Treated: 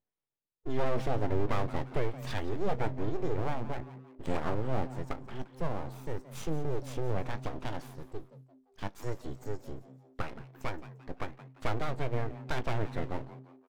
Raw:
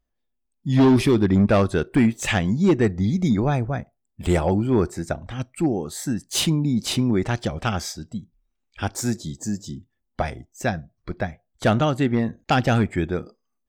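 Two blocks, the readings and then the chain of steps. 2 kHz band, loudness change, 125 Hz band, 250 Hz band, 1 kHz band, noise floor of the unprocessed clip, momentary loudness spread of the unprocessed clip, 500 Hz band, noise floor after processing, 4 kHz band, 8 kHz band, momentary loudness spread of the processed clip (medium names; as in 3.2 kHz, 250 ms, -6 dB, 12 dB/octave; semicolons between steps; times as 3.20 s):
-13.0 dB, -14.5 dB, -13.0 dB, -19.0 dB, -9.5 dB, -76 dBFS, 13 LU, -11.0 dB, -70 dBFS, -18.0 dB, -22.5 dB, 12 LU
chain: high-pass 170 Hz 12 dB/octave; peaking EQ 310 Hz -14.5 dB 2.9 oct; in parallel at 0 dB: compression, threshold -36 dBFS, peak gain reduction 15.5 dB; on the sum: boxcar filter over 36 samples; full-wave rectifier; doubling 19 ms -13 dB; on a send: frequency-shifting echo 173 ms, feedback 39%, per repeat +130 Hz, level -16 dB; on the sum: trim +2.5 dB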